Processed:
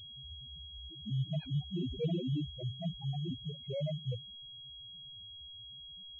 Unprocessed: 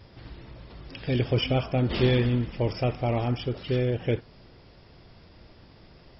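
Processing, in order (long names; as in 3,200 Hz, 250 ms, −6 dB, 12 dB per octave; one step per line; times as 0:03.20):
pitch shifter swept by a sawtooth +6.5 semitones, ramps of 367 ms
spectral peaks only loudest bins 1
switching amplifier with a slow clock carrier 3,300 Hz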